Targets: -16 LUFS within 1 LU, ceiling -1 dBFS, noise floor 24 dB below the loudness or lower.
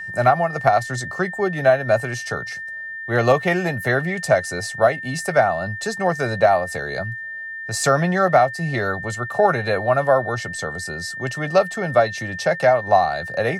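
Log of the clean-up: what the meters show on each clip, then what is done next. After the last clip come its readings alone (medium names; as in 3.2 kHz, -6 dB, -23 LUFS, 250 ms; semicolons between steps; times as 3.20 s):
steady tone 1.8 kHz; tone level -29 dBFS; loudness -20.5 LUFS; peak level -4.0 dBFS; loudness target -16.0 LUFS
-> band-stop 1.8 kHz, Q 30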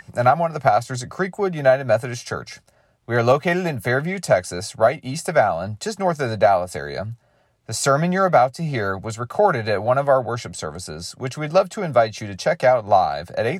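steady tone not found; loudness -20.5 LUFS; peak level -4.5 dBFS; loudness target -16.0 LUFS
-> trim +4.5 dB; peak limiter -1 dBFS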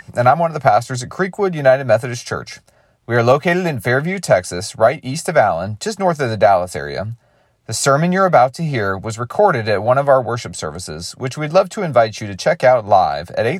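loudness -16.5 LUFS; peak level -1.0 dBFS; noise floor -56 dBFS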